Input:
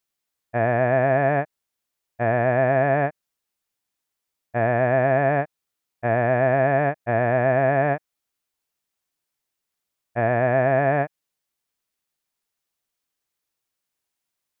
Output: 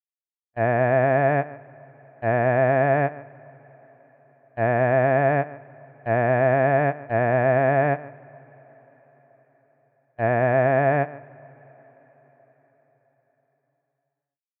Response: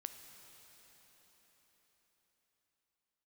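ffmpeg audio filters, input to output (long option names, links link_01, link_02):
-filter_complex "[0:a]agate=range=-40dB:threshold=-21dB:ratio=16:detection=peak,asplit=2[link_01][link_02];[1:a]atrim=start_sample=2205,lowpass=2900,adelay=148[link_03];[link_02][link_03]afir=irnorm=-1:irlink=0,volume=-13dB[link_04];[link_01][link_04]amix=inputs=2:normalize=0"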